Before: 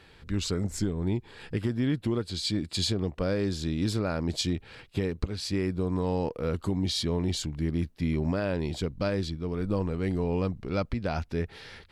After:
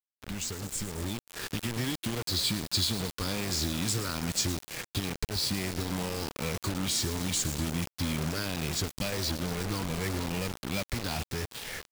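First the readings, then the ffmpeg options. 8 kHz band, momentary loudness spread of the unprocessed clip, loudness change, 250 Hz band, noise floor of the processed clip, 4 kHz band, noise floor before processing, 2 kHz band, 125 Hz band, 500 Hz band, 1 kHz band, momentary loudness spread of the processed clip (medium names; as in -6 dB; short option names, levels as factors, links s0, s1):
+8.0 dB, 4 LU, -1.5 dB, -5.0 dB, under -85 dBFS, +3.0 dB, -55 dBFS, +3.5 dB, -4.0 dB, -7.0 dB, 0.0 dB, 7 LU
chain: -filter_complex "[0:a]afftfilt=real='re*pow(10,9/40*sin(2*PI*(0.52*log(max(b,1)*sr/1024/100)/log(2)-(-2.3)*(pts-256)/sr)))':imag='im*pow(10,9/40*sin(2*PI*(0.52*log(max(b,1)*sr/1024/100)/log(2)-(-2.3)*(pts-256)/sr)))':win_size=1024:overlap=0.75,lowpass=f=10000:w=0.5412,lowpass=f=10000:w=1.3066,acrossover=split=2700|6300[s0][s1][s2];[s0]acompressor=threshold=0.0112:ratio=4[s3];[s1]acompressor=threshold=0.00447:ratio=4[s4];[s2]acompressor=threshold=0.00631:ratio=4[s5];[s3][s4][s5]amix=inputs=3:normalize=0,highshelf=f=5900:g=6,asplit=7[s6][s7][s8][s9][s10][s11][s12];[s7]adelay=112,afreqshift=30,volume=0.158[s13];[s8]adelay=224,afreqshift=60,volume=0.0977[s14];[s9]adelay=336,afreqshift=90,volume=0.061[s15];[s10]adelay=448,afreqshift=120,volume=0.0376[s16];[s11]adelay=560,afreqshift=150,volume=0.0234[s17];[s12]adelay=672,afreqshift=180,volume=0.0145[s18];[s6][s13][s14][s15][s16][s17][s18]amix=inputs=7:normalize=0,acrossover=split=190|1100|2700[s19][s20][s21][s22];[s20]alimiter=level_in=5.31:limit=0.0631:level=0:latency=1:release=164,volume=0.188[s23];[s19][s23][s21][s22]amix=inputs=4:normalize=0,acrusher=bits=6:mix=0:aa=0.000001,dynaudnorm=f=110:g=21:m=2,volume=1.26"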